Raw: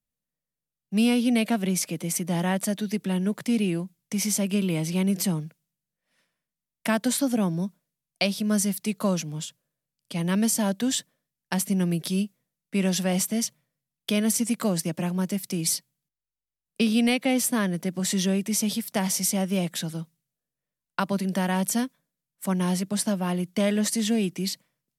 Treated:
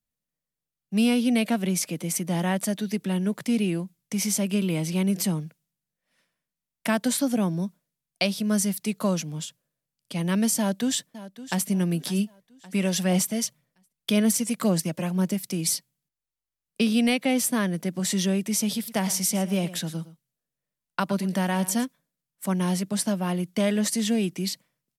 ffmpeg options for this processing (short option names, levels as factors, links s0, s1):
-filter_complex "[0:a]asplit=2[s0][s1];[s1]afade=t=in:st=10.58:d=0.01,afade=t=out:st=11.68:d=0.01,aecho=0:1:560|1120|1680|2240:0.16788|0.0671522|0.0268609|0.0107443[s2];[s0][s2]amix=inputs=2:normalize=0,asplit=3[s3][s4][s5];[s3]afade=t=out:st=12.18:d=0.02[s6];[s4]aphaser=in_gain=1:out_gain=1:delay=2:decay=0.3:speed=1.9:type=sinusoidal,afade=t=in:st=12.18:d=0.02,afade=t=out:st=15.33:d=0.02[s7];[s5]afade=t=in:st=15.33:d=0.02[s8];[s6][s7][s8]amix=inputs=3:normalize=0,asplit=3[s9][s10][s11];[s9]afade=t=out:st=18.75:d=0.02[s12];[s10]aecho=1:1:113:0.158,afade=t=in:st=18.75:d=0.02,afade=t=out:st=21.84:d=0.02[s13];[s11]afade=t=in:st=21.84:d=0.02[s14];[s12][s13][s14]amix=inputs=3:normalize=0"